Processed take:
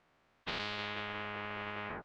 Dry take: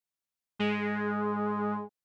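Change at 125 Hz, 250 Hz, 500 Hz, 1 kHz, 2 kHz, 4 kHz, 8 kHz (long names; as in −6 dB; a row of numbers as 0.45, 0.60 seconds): −10.0 dB, −17.0 dB, −11.5 dB, −7.5 dB, −2.5 dB, +3.5 dB, can't be measured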